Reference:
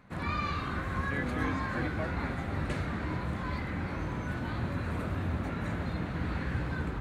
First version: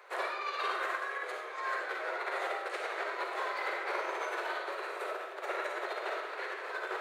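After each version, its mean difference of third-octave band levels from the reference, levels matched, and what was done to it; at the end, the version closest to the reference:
14.5 dB: compressor whose output falls as the input rises −36 dBFS, ratio −0.5
Butterworth high-pass 370 Hz 96 dB per octave
comb and all-pass reverb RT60 0.71 s, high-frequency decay 0.85×, pre-delay 15 ms, DRR 0.5 dB
level +3 dB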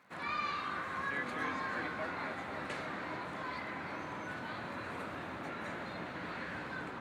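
4.5 dB: meter weighting curve A
surface crackle 130 per second −59 dBFS
bucket-brigade delay 275 ms, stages 2,048, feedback 84%, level −9 dB
level −2.5 dB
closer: second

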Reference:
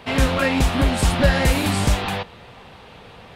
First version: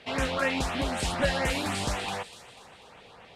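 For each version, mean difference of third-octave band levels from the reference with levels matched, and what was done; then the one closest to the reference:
3.5 dB: Bessel low-pass filter 7,500 Hz, order 2
low-shelf EQ 310 Hz −11.5 dB
auto-filter notch saw up 4 Hz 860–5,400 Hz
on a send: delay with a high-pass on its return 245 ms, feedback 47%, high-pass 3,900 Hz, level −9 dB
on the sum: level −4 dB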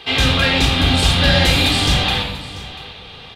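5.0 dB: parametric band 3,600 Hz +15 dB 1.2 octaves
mains-hum notches 50/100 Hz
on a send: single-tap delay 690 ms −17 dB
on the sum: rectangular room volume 3,200 cubic metres, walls furnished, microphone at 3.8 metres
level −3 dB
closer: first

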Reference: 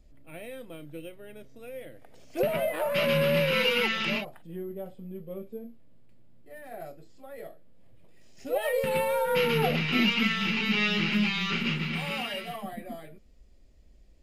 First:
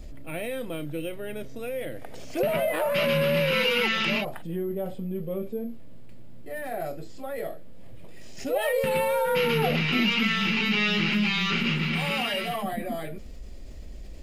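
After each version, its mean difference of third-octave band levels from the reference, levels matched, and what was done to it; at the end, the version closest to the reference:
4.0 dB: envelope flattener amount 50%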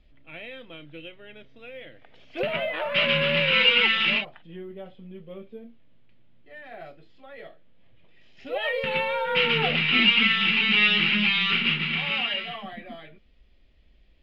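6.0 dB: drawn EQ curve 570 Hz 0 dB, 3,300 Hz +12 dB, 8,400 Hz −21 dB
level −2 dB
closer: first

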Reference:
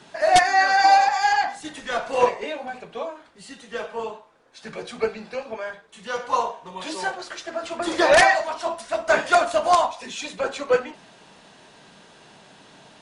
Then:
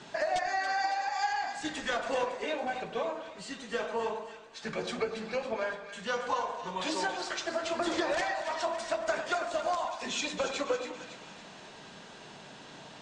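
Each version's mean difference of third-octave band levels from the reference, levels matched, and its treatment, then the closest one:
7.5 dB: Butterworth low-pass 8,300 Hz 48 dB per octave
downward compressor 16 to 1, threshold −28 dBFS, peak gain reduction 18 dB
echo with a time of its own for lows and highs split 1,400 Hz, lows 101 ms, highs 278 ms, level −9 dB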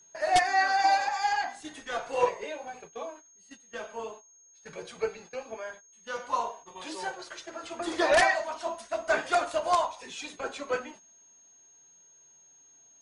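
3.5 dB: noise gate −39 dBFS, range −16 dB
flanger 0.41 Hz, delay 1.9 ms, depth 1.5 ms, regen −51%
steady tone 6,500 Hz −52 dBFS
level −3.5 dB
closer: second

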